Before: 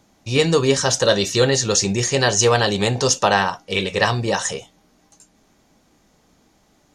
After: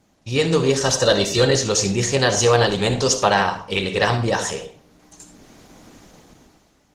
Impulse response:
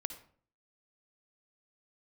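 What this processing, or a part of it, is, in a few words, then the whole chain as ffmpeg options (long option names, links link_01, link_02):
speakerphone in a meeting room: -filter_complex "[1:a]atrim=start_sample=2205[link_01];[0:a][link_01]afir=irnorm=-1:irlink=0,dynaudnorm=framelen=140:gausssize=11:maxgain=15.5dB,volume=-1dB" -ar 48000 -c:a libopus -b:a 16k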